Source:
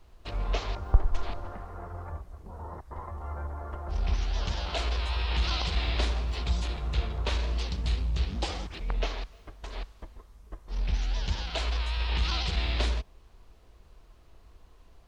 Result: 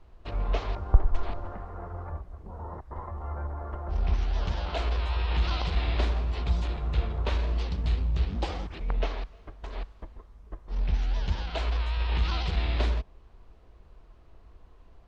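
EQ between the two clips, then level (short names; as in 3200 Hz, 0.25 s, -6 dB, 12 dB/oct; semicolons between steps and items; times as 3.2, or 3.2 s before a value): LPF 1800 Hz 6 dB/oct; +2.0 dB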